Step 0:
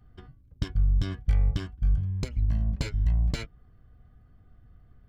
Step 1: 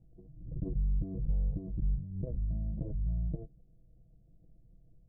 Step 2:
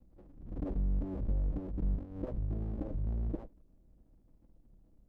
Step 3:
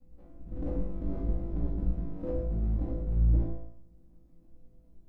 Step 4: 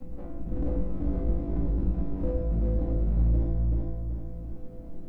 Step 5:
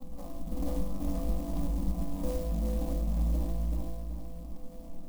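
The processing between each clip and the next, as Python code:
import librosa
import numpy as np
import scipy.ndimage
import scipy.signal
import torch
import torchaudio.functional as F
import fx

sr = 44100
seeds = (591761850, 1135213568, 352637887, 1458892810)

y1 = scipy.signal.sosfilt(scipy.signal.ellip(4, 1.0, 70, 630.0, 'lowpass', fs=sr, output='sos'), x)
y1 = y1 + 0.96 * np.pad(y1, (int(6.1 * sr / 1000.0), 0))[:len(y1)]
y1 = fx.pre_swell(y1, sr, db_per_s=68.0)
y1 = y1 * librosa.db_to_amplitude(-8.0)
y2 = fx.lower_of_two(y1, sr, delay_ms=3.5)
y2 = fx.dynamic_eq(y2, sr, hz=540.0, q=1.2, threshold_db=-55.0, ratio=4.0, max_db=4)
y3 = fx.comb_fb(y2, sr, f0_hz=56.0, decay_s=0.65, harmonics='all', damping=0.0, mix_pct=90)
y3 = y3 + 10.0 ** (-9.0 / 20.0) * np.pad(y3, (int(113 * sr / 1000.0), 0))[:len(y3)]
y3 = fx.room_shoebox(y3, sr, seeds[0], volume_m3=230.0, walls='furnished', distance_m=2.0)
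y3 = y3 * librosa.db_to_amplitude(8.0)
y4 = fx.echo_feedback(y3, sr, ms=380, feedback_pct=24, wet_db=-6)
y4 = fx.band_squash(y4, sr, depth_pct=70)
y4 = y4 * librosa.db_to_amplitude(3.0)
y5 = fx.lowpass_res(y4, sr, hz=1200.0, q=7.0)
y5 = fx.fixed_phaser(y5, sr, hz=390.0, stages=6)
y5 = fx.clock_jitter(y5, sr, seeds[1], jitter_ms=0.063)
y5 = y5 * librosa.db_to_amplitude(-1.5)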